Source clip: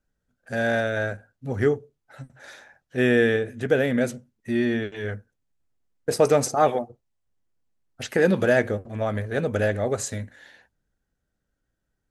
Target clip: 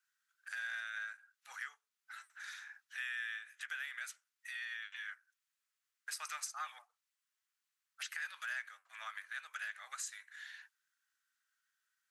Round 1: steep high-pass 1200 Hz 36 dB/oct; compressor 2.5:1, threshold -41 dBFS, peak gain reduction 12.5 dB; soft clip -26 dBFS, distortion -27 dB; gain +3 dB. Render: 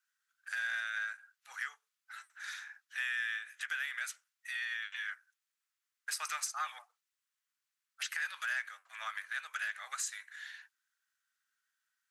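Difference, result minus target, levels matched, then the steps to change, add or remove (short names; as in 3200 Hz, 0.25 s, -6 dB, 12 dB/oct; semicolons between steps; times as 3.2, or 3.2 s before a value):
compressor: peak gain reduction -5.5 dB
change: compressor 2.5:1, threshold -50.5 dBFS, peak gain reduction 18 dB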